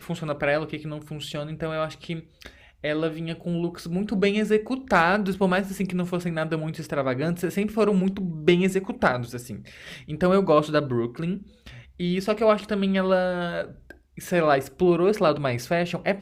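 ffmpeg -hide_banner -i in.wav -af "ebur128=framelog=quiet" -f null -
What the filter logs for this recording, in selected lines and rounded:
Integrated loudness:
  I:         -24.5 LUFS
  Threshold: -35.1 LUFS
Loudness range:
  LRA:         5.9 LU
  Threshold: -45.0 LUFS
  LRA low:   -29.5 LUFS
  LRA high:  -23.6 LUFS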